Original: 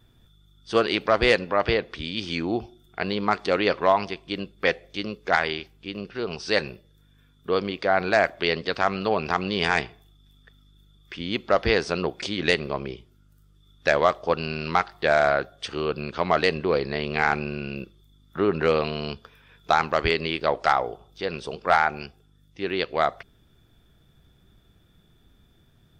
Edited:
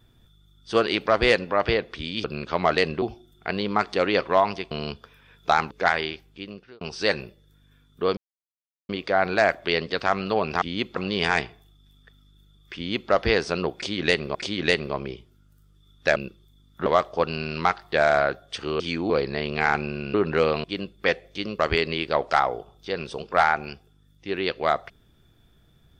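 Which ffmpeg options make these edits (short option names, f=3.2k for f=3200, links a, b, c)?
-filter_complex "[0:a]asplit=17[a][b][c][d][e][f][g][h][i][j][k][l][m][n][o][p][q];[a]atrim=end=2.242[r];[b]atrim=start=15.898:end=16.682[s];[c]atrim=start=2.538:end=4.232[t];[d]atrim=start=18.918:end=19.922[u];[e]atrim=start=5.178:end=6.28,asetpts=PTS-STARTPTS,afade=t=out:st=0.562:d=0.54[v];[f]atrim=start=6.28:end=7.64,asetpts=PTS-STARTPTS,afade=t=in:d=0.004:c=hsin,afade=t=out:st=1.356:d=0.004:c=hsin,apad=pad_dur=0.72[w];[g]atrim=start=7.64:end=9.372,asetpts=PTS-STARTPTS,afade=t=in:d=0.004:c=hsin[x];[h]atrim=start=11.158:end=11.512[y];[i]atrim=start=9.368:end=12.752[z];[j]atrim=start=12.148:end=13.962[aa];[k]atrim=start=17.718:end=18.422[ab];[l]atrim=start=13.958:end=15.902[ac];[m]atrim=start=2.238:end=2.542[ad];[n]atrim=start=16.678:end=17.722[ae];[o]atrim=start=18.418:end=18.922[af];[p]atrim=start=4.228:end=5.182[ag];[q]atrim=start=19.918[ah];[r][s]acrossfade=d=0.004:c1=hsin:c2=hsin[ai];[ai][t]acrossfade=d=0.004:c1=hsin:c2=hsin[aj];[aj][u]acrossfade=d=0.004:c1=hsin:c2=hsin[ak];[v][w][x]concat=n=3:v=0:a=1[al];[ak][al]acrossfade=d=0.004:c1=hsin:c2=hsin[am];[am][y]acrossfade=d=0.004:c1=hsin:c2=hsin[an];[an][z]acrossfade=d=0.004:c1=hsin:c2=hsin[ao];[ao][aa]acrossfade=d=0.004:c1=hsin:c2=hsin[ap];[ap][ab]acrossfade=d=0.004:c1=hsin:c2=hsin[aq];[aq][ac]acrossfade=d=0.004:c1=hsin:c2=hsin[ar];[ar][ad]acrossfade=d=0.004:c1=hsin:c2=hsin[as];[as][ae]acrossfade=d=0.004:c1=hsin:c2=hsin[at];[at][af]acrossfade=d=0.004:c1=hsin:c2=hsin[au];[au][ag]acrossfade=d=0.004:c1=hsin:c2=hsin[av];[av][ah]acrossfade=d=0.004:c1=hsin:c2=hsin"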